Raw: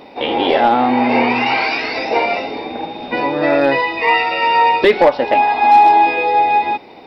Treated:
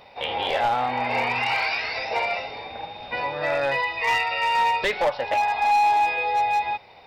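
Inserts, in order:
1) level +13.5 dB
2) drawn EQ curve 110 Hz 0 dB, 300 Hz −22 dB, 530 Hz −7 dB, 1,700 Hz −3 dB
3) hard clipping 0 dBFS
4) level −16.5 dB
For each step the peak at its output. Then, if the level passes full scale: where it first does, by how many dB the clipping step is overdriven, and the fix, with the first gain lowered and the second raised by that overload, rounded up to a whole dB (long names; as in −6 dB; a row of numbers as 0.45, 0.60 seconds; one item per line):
+9.5, +8.0, 0.0, −16.5 dBFS
step 1, 8.0 dB
step 1 +5.5 dB, step 4 −8.5 dB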